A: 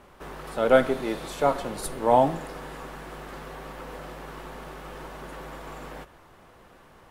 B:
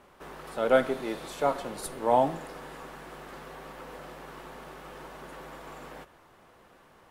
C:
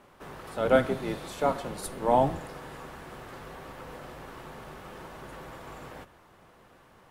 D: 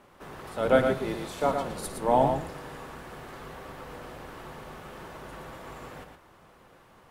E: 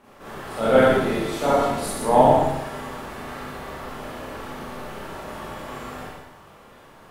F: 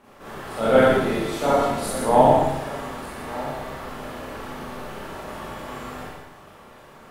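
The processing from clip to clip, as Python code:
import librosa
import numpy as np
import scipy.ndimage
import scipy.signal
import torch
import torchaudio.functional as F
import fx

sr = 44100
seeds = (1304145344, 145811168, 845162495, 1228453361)

y1 = fx.low_shelf(x, sr, hz=110.0, db=-8.0)
y1 = y1 * 10.0 ** (-3.5 / 20.0)
y2 = fx.octave_divider(y1, sr, octaves=1, level_db=-1.0)
y3 = y2 + 10.0 ** (-6.0 / 20.0) * np.pad(y2, (int(115 * sr / 1000.0), 0))[:len(y2)]
y4 = fx.rev_schroeder(y3, sr, rt60_s=0.83, comb_ms=28, drr_db=-7.5)
y5 = y4 + 10.0 ** (-17.0 / 20.0) * np.pad(y4, (int(1195 * sr / 1000.0), 0))[:len(y4)]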